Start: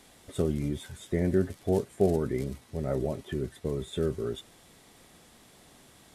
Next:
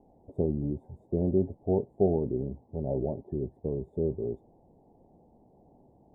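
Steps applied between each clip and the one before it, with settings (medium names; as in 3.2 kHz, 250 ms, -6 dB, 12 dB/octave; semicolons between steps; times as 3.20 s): elliptic low-pass 850 Hz, stop band 40 dB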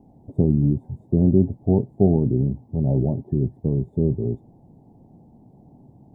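graphic EQ 125/250/500 Hz +10/+5/-6 dB; trim +5.5 dB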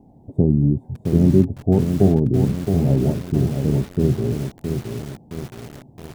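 bit-crushed delay 668 ms, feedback 55%, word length 6-bit, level -6 dB; trim +2 dB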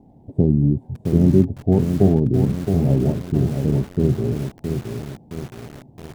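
median filter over 15 samples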